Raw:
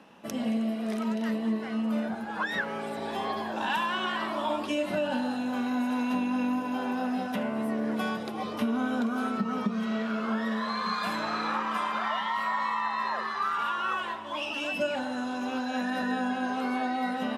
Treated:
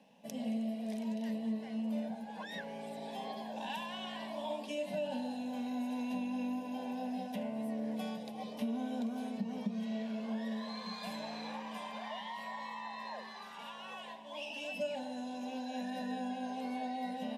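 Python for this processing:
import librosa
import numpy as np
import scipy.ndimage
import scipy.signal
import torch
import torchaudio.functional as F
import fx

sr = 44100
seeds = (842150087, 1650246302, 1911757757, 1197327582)

y = fx.fixed_phaser(x, sr, hz=350.0, stages=6)
y = y * librosa.db_to_amplitude(-7.0)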